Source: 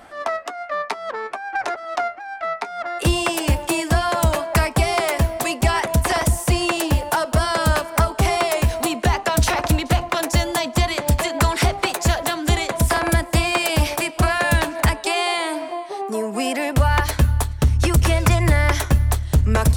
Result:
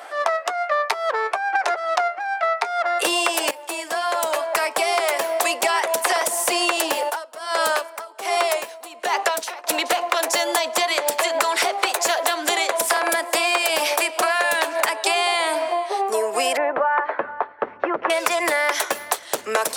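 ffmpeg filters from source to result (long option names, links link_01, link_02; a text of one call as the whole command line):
ffmpeg -i in.wav -filter_complex "[0:a]asettb=1/sr,asplit=3[link_01][link_02][link_03];[link_01]atrim=end=0.854[link_04];[link_02]atrim=start=0.85:end=1.33,asetpts=PTS-STARTPTS,afade=type=in:duration=0.004:curve=qsin,afade=type=out:start_time=0.476:duration=0.004:curve=qsin,equalizer=frequency=13000:width_type=o:width=0.36:gain=9[link_05];[link_03]atrim=start=1.326[link_06];[link_04][link_05]acrossfade=duration=0.004:curve1=hsin:curve2=qsin[link_07];[link_07][link_06]acrossfade=duration=0.004:curve1=qsin:curve2=hsin,asplit=3[link_08][link_09][link_10];[link_08]afade=type=out:start_time=7.09:duration=0.02[link_11];[link_09]aeval=exprs='val(0)*pow(10,-22*(0.5-0.5*cos(2*PI*1.3*n/s))/20)':channel_layout=same,afade=type=in:start_time=7.09:duration=0.02,afade=type=out:start_time=9.67:duration=0.02[link_12];[link_10]afade=type=in:start_time=9.67:duration=0.02[link_13];[link_11][link_12][link_13]amix=inputs=3:normalize=0,asettb=1/sr,asplit=3[link_14][link_15][link_16];[link_14]atrim=end=16.574[link_17];[link_15]atrim=start=16.57:end=18.1,asetpts=PTS-STARTPTS,afade=type=in:duration=0.004:curve=qsin,afade=type=out:start_time=1.526:duration=0.004:curve=qsin,lowpass=frequency=1700:width=0.5412,lowpass=frequency=1700:width=1.3066[link_18];[link_16]atrim=start=18.096[link_19];[link_17][link_18]acrossfade=duration=0.004:curve1=hsin:curve2=qsin[link_20];[link_20][link_19]acrossfade=duration=0.004:curve1=qsin:curve2=hsin,asplit=2[link_21][link_22];[link_21]atrim=end=3.51,asetpts=PTS-STARTPTS,afade=type=out:start_time=3.506:duration=0.004:curve=hsin:silence=0.158489[link_23];[link_22]atrim=start=3.51,asetpts=PTS-STARTPTS,afade=type=in:duration=2.04:silence=0.158489[link_24];[link_23][link_24]concat=n=2:v=0:a=1,highpass=frequency=430:width=0.5412,highpass=frequency=430:width=1.3066,acompressor=threshold=-24dB:ratio=6,volume=7dB" out.wav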